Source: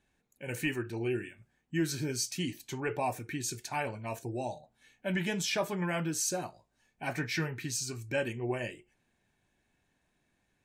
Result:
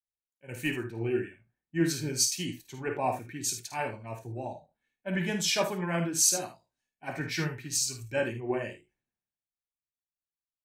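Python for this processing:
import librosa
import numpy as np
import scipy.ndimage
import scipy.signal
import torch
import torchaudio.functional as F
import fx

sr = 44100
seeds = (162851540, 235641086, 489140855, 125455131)

y = fx.room_early_taps(x, sr, ms=(53, 77), db=(-8.0, -10.0))
y = fx.band_widen(y, sr, depth_pct=100)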